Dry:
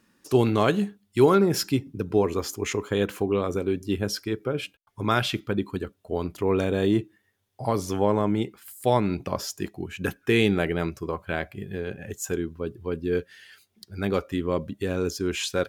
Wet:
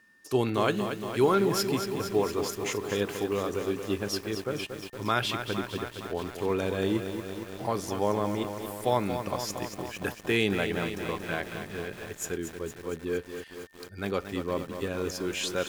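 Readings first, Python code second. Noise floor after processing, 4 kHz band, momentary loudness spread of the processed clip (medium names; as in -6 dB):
-48 dBFS, -1.5 dB, 10 LU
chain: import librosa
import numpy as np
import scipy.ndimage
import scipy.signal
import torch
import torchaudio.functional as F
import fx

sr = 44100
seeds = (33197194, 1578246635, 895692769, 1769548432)

y = fx.low_shelf(x, sr, hz=410.0, db=-5.5)
y = y + 10.0 ** (-57.0 / 20.0) * np.sin(2.0 * np.pi * 1800.0 * np.arange(len(y)) / sr)
y = fx.echo_crushed(y, sr, ms=231, feedback_pct=80, bits=7, wet_db=-8.0)
y = y * 10.0 ** (-2.5 / 20.0)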